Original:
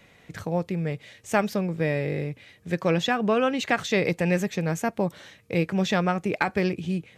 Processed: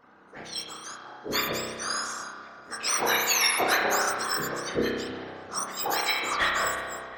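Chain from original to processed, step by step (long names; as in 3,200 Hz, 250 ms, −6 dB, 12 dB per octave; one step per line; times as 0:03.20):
frequency axis turned over on the octave scale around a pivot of 1,700 Hz
low-pass that shuts in the quiet parts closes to 2,500 Hz, open at −25.5 dBFS
0:02.83–0:03.77: leveller curve on the samples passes 1
0:04.69–0:05.52: RIAA equalisation playback
random phases in short frames
0:06.14–0:06.67: mid-hump overdrive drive 19 dB, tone 1,400 Hz, clips at −13.5 dBFS
pitch vibrato 3.4 Hz 17 cents
delay with a low-pass on its return 359 ms, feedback 72%, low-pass 2,200 Hz, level −18 dB
spring reverb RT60 1.5 s, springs 31 ms, chirp 40 ms, DRR −1.5 dB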